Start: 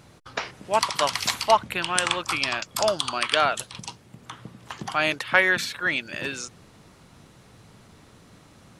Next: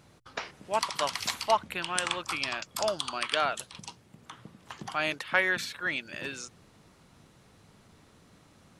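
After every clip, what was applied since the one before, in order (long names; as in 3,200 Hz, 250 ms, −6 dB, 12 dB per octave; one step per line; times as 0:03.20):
mains-hum notches 60/120 Hz
level −6.5 dB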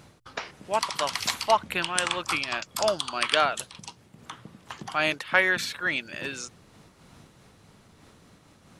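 amplitude modulation by smooth noise, depth 65%
level +7 dB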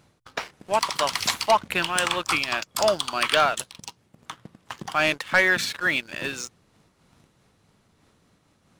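leveller curve on the samples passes 2
level −3.5 dB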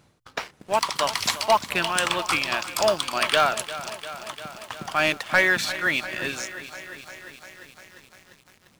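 noise that follows the level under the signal 30 dB
feedback echo at a low word length 348 ms, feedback 80%, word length 7 bits, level −14 dB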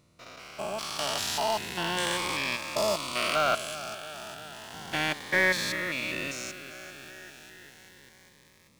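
spectrum averaged block by block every 200 ms
phaser whose notches keep moving one way rising 0.33 Hz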